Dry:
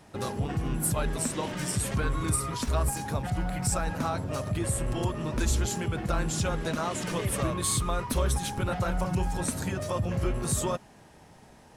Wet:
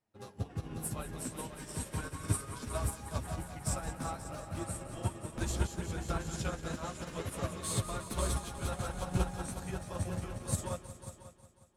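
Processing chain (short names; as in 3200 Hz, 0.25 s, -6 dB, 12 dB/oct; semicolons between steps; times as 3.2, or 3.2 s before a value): flange 0.38 Hz, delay 8.7 ms, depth 6.9 ms, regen -16%; on a send: multi-head echo 0.181 s, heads all three, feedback 62%, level -10 dB; on the sum: upward expander 2.5:1, over -44 dBFS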